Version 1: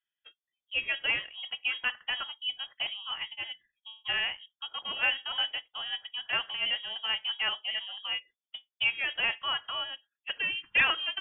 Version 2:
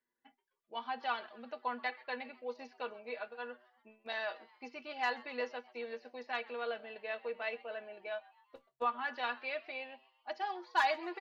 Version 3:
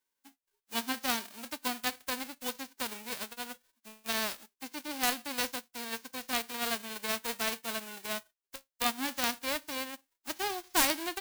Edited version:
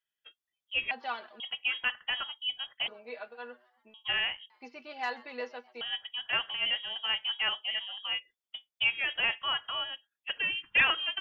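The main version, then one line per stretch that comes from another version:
1
0.91–1.4 from 2
2.88–3.94 from 2
4.5–5.81 from 2
not used: 3

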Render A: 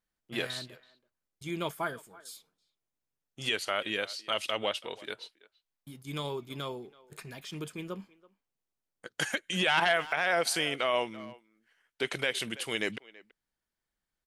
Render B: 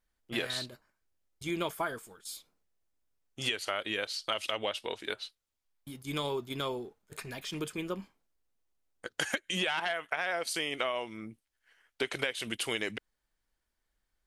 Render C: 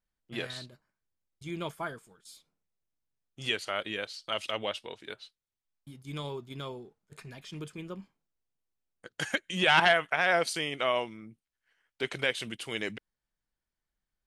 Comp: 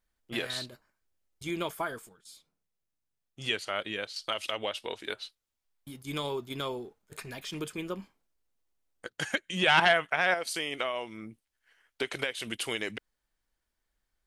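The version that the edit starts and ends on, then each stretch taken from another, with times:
B
2.09–4.16 from C
9.1–10.34 from C
not used: A

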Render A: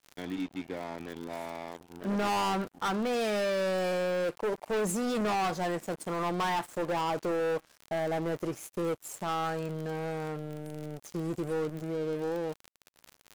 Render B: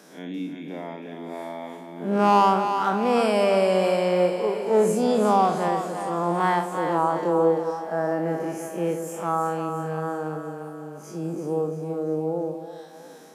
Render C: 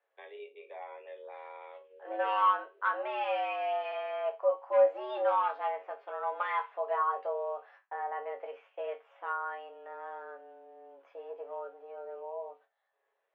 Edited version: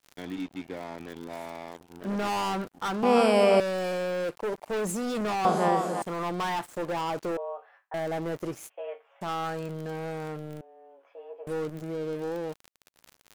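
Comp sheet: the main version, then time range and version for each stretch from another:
A
3.03–3.6 from B
5.45–6.02 from B
7.37–7.94 from C
8.7–9.21 from C
10.61–11.47 from C

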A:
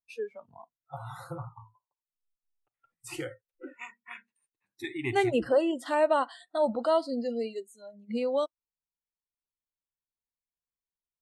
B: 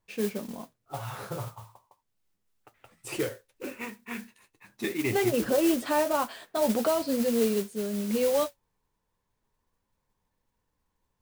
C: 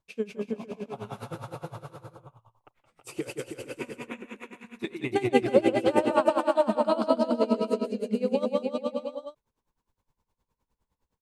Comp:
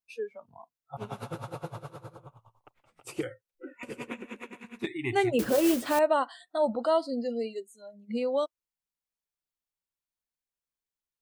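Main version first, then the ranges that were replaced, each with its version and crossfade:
A
0.97–3.23 from C
3.83–4.87 from C
5.39–5.99 from B

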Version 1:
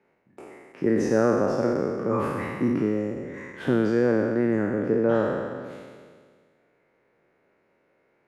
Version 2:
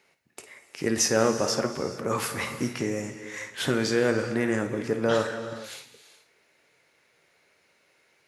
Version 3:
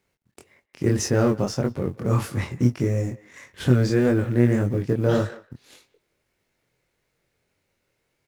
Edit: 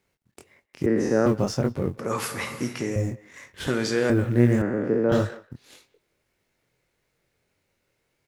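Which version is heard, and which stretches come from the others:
3
0.86–1.26 from 1
1.99–2.96 from 2
3.67–4.1 from 2
4.62–5.12 from 1

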